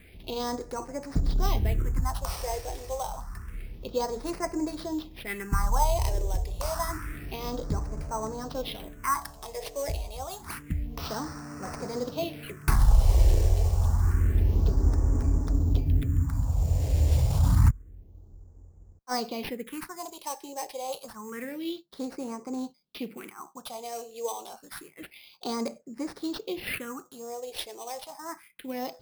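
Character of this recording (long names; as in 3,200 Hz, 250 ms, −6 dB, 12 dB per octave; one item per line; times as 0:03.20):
aliases and images of a low sample rate 7,100 Hz, jitter 0%
phaser sweep stages 4, 0.28 Hz, lowest notch 220–3,300 Hz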